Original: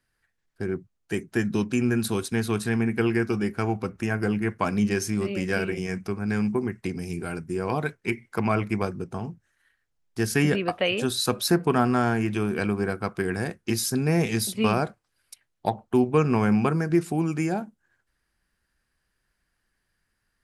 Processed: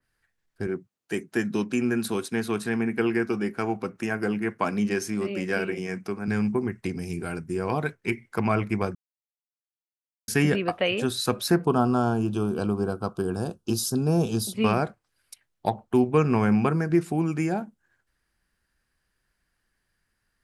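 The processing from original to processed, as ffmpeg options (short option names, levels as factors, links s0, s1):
-filter_complex "[0:a]asettb=1/sr,asplit=3[s0][s1][s2];[s0]atrim=end=0.674[s3];[s1]atrim=start=0.67:end=6.28,asetpts=PTS-STARTPTS,afade=t=in:d=0.004:c=qsin,afade=t=out:st=5.606:d=0.004:c=qsin,highpass=180[s4];[s2]atrim=start=6.276[s5];[s3][s4]acrossfade=d=0.004:c1=hsin:c2=qsin[s6];[s6][s5]acrossfade=d=0.004:c1=qsin:c2=hsin,asettb=1/sr,asplit=3[s7][s8][s9];[s7]atrim=end=11.654[s10];[s8]atrim=start=11.65:end=14.54,asetpts=PTS-STARTPTS,afade=t=in:d=0.004:c=qsin,afade=t=out:st=2.886:d=0.004:c=qsin,asuperstop=centerf=2000:order=4:qfactor=1.2[s11];[s9]atrim=start=14.536[s12];[s10][s11]acrossfade=d=0.004:c1=hsin:c2=qsin[s13];[s13][s12]acrossfade=d=0.004:c1=qsin:c2=hsin,asplit=3[s14][s15][s16];[s14]atrim=end=8.95,asetpts=PTS-STARTPTS,afade=t=out:st=8.946:d=0.004:c=hsin[s17];[s15]atrim=start=8.95:end=10.28,asetpts=PTS-STARTPTS,volume=0[s18];[s16]atrim=start=10.28,asetpts=PTS-STARTPTS,afade=t=in:d=0.004:c=hsin[s19];[s17][s18][s19]concat=n=3:v=0:a=1,adynamicequalizer=threshold=0.00708:dfrequency=3100:dqfactor=0.7:tfrequency=3100:tqfactor=0.7:attack=5:release=100:ratio=0.375:range=2:mode=cutabove:tftype=highshelf"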